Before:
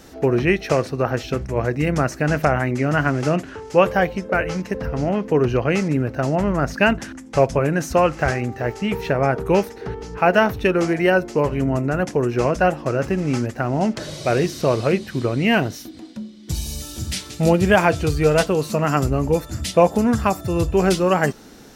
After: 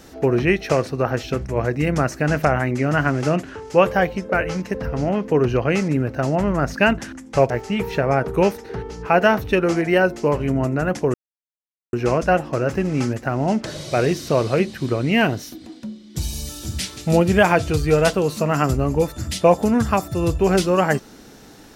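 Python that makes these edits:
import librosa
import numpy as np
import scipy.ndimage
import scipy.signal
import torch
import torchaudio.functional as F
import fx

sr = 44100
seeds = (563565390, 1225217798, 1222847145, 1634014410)

y = fx.edit(x, sr, fx.cut(start_s=7.5, length_s=1.12),
    fx.insert_silence(at_s=12.26, length_s=0.79), tone=tone)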